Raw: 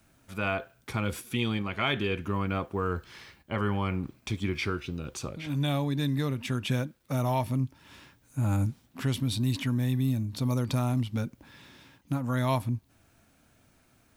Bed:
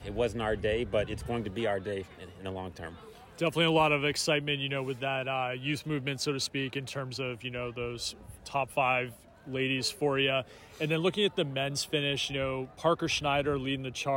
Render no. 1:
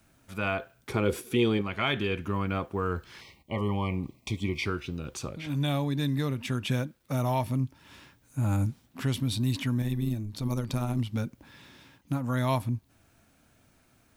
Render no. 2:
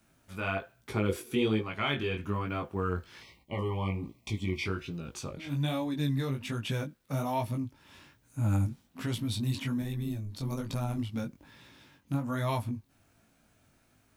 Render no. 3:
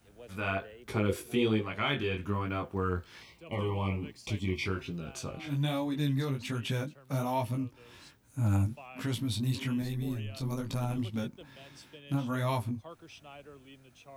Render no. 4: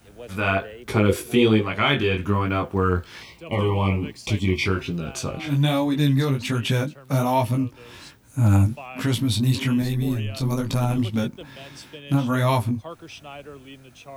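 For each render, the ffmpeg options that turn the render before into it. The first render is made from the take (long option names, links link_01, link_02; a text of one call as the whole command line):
ffmpeg -i in.wav -filter_complex "[0:a]asettb=1/sr,asplit=3[link_01][link_02][link_03];[link_01]atrim=end=0.904[link_04];[link_02]atrim=start=0.9:end=1.61,asetpts=PTS-STARTPTS,afade=type=in:duration=0.004:curve=qsin,afade=type=out:start_time=0.706:duration=0.004:curve=qsin,equalizer=frequency=410:width_type=o:width=0.72:gain=14.5[link_05];[link_03]atrim=start=1.606[link_06];[link_04][link_05]acrossfade=duration=0.004:curve1=hsin:curve2=qsin[link_07];[link_07][link_06]acrossfade=duration=0.004:curve1=qsin:curve2=hsin,asettb=1/sr,asplit=3[link_08][link_09][link_10];[link_08]atrim=end=3.214[link_11];[link_09]atrim=start=3.21:end=4.66,asetpts=PTS-STARTPTS,afade=type=in:duration=0.004:curve=qsin,afade=type=out:start_time=1.446:duration=0.004:curve=qsin,asuperstop=centerf=1500:order=20:qfactor=2.2[link_12];[link_10]atrim=start=4.656[link_13];[link_11][link_12]acrossfade=duration=0.004:curve1=hsin:curve2=qsin[link_14];[link_14][link_13]acrossfade=duration=0.004:curve1=qsin:curve2=hsin,asettb=1/sr,asplit=3[link_15][link_16][link_17];[link_15]atrim=end=9.824[link_18];[link_16]atrim=start=9.82:end=10.99,asetpts=PTS-STARTPTS,afade=type=in:duration=0.004:curve=qsin,afade=type=out:start_time=1.166:duration=0.004:curve=qsin,tremolo=f=110:d=0.571[link_19];[link_17]atrim=start=10.986[link_20];[link_18][link_19]acrossfade=duration=0.004:curve1=hsin:curve2=qsin[link_21];[link_21][link_20]acrossfade=duration=0.004:curve1=qsin:curve2=hsin" out.wav
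ffmpeg -i in.wav -af "flanger=delay=17.5:depth=4.8:speed=1.2" out.wav
ffmpeg -i in.wav -i bed.wav -filter_complex "[1:a]volume=-21.5dB[link_01];[0:a][link_01]amix=inputs=2:normalize=0" out.wav
ffmpeg -i in.wav -af "volume=10.5dB" out.wav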